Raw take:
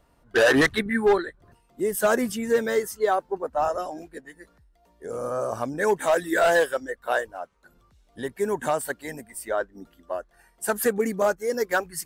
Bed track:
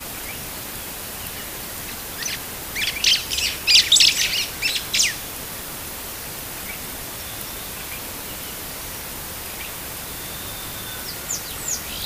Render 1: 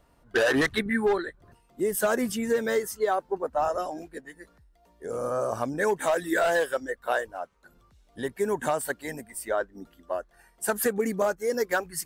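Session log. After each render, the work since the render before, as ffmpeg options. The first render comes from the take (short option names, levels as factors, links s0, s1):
-af "acompressor=threshold=0.0891:ratio=4"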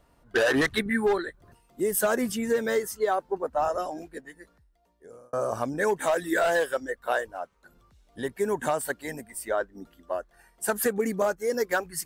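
-filter_complex "[0:a]asettb=1/sr,asplit=3[s0][s1][s2];[s0]atrim=end=0.734[s3];[s1]atrim=start=0.73:end=2.02,asetpts=PTS-STARTPTS,afade=t=in:d=0.004:c=qsin,afade=t=out:st=1.286:d=0.004:c=qsin,highshelf=f=5800:g=4.5[s4];[s2]atrim=start=2.016[s5];[s3][s4]acrossfade=d=0.004:c1=hsin:c2=qsin[s6];[s6][s5]acrossfade=d=0.004:c1=qsin:c2=hsin,asplit=2[s7][s8];[s7]atrim=end=5.33,asetpts=PTS-STARTPTS,afade=t=out:st=4.2:d=1.13[s9];[s8]atrim=start=5.33,asetpts=PTS-STARTPTS,afade=t=in:d=0.004:c=hsin[s10];[s9][s10]concat=n=2:v=0:a=1"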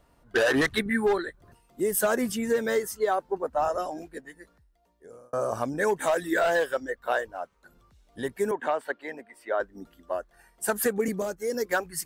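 -filter_complex "[0:a]asettb=1/sr,asplit=3[s0][s1][s2];[s0]atrim=end=6.274[s3];[s1]atrim=start=6.27:end=7.39,asetpts=PTS-STARTPTS,afade=t=in:d=0.004:c=qsin,afade=t=out:st=1.116:d=0.004:c=qsin,equalizer=f=10000:w=1.2:g=-6.5[s4];[s2]atrim=start=7.386[s5];[s3][s4]acrossfade=d=0.004:c1=hsin:c2=qsin[s6];[s6][s5]acrossfade=d=0.004:c1=qsin:c2=hsin,asettb=1/sr,asplit=3[s7][s8][s9];[s7]atrim=end=8.514[s10];[s8]atrim=start=8.51:end=9.6,asetpts=PTS-STARTPTS,afade=t=in:d=0.004:c=qsin,afade=t=out:st=1.086:d=0.004:c=qsin,acrossover=split=270 3800:gain=0.0794 1 0.0708[s11][s12][s13];[s11][s12][s13]amix=inputs=3:normalize=0[s14];[s9]atrim=start=9.596[s15];[s10][s14]acrossfade=d=0.004:c1=hsin:c2=qsin[s16];[s16][s15]acrossfade=d=0.004:c1=qsin:c2=hsin,asettb=1/sr,asplit=3[s17][s18][s19];[s17]atrim=end=11.084[s20];[s18]atrim=start=11.08:end=11.66,asetpts=PTS-STARTPTS,afade=t=in:d=0.004:c=qsin,afade=t=out:st=0.576:d=0.004:c=qsin,acrossover=split=470|3000[s21][s22][s23];[s22]acompressor=threshold=0.02:ratio=6:attack=3.2:release=140:knee=2.83:detection=peak[s24];[s21][s24][s23]amix=inputs=3:normalize=0[s25];[s19]atrim=start=11.656[s26];[s20][s25]acrossfade=d=0.004:c1=hsin:c2=qsin[s27];[s27][s26]acrossfade=d=0.004:c1=qsin:c2=hsin"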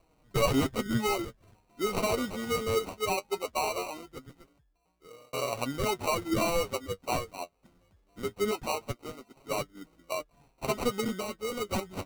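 -af "acrusher=samples=26:mix=1:aa=0.000001,flanger=delay=6.1:depth=5.5:regen=39:speed=0.2:shape=triangular"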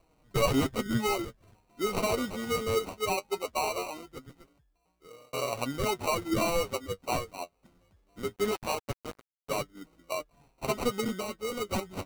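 -filter_complex "[0:a]asettb=1/sr,asplit=3[s0][s1][s2];[s0]atrim=end=8.364[s3];[s1]atrim=start=8.36:end=9.57,asetpts=PTS-STARTPTS,afade=t=in:d=0.004:c=qsin,afade=t=out:st=1.206:d=0.004:c=qsin,acrusher=bits=5:mix=0:aa=0.5[s4];[s2]atrim=start=9.566[s5];[s3][s4]acrossfade=d=0.004:c1=hsin:c2=qsin[s6];[s6][s5]acrossfade=d=0.004:c1=qsin:c2=hsin"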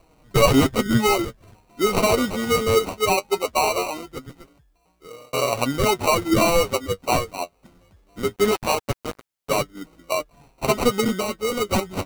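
-af "volume=3.16"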